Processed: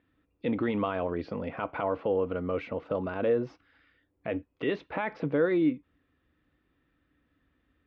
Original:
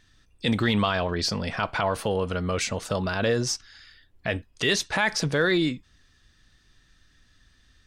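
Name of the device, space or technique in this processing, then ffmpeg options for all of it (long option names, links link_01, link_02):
bass cabinet: -af "highpass=77,equalizer=frequency=110:width_type=q:width=4:gain=-8,equalizer=frequency=200:width_type=q:width=4:gain=-3,equalizer=frequency=290:width_type=q:width=4:gain=10,equalizer=frequency=500:width_type=q:width=4:gain=7,equalizer=frequency=1700:width_type=q:width=4:gain=-8,lowpass=frequency=2300:width=0.5412,lowpass=frequency=2300:width=1.3066,volume=-6dB"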